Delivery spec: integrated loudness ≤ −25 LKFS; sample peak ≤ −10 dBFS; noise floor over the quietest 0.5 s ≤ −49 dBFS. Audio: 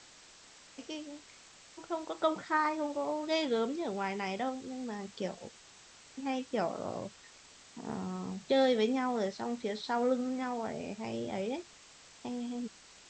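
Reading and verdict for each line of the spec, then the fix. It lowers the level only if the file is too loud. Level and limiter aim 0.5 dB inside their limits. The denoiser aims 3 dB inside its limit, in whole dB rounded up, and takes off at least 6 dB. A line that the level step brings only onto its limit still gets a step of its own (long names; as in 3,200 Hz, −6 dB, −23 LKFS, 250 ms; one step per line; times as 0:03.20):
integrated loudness −34.5 LKFS: in spec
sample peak −16.5 dBFS: in spec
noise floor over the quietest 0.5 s −57 dBFS: in spec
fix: no processing needed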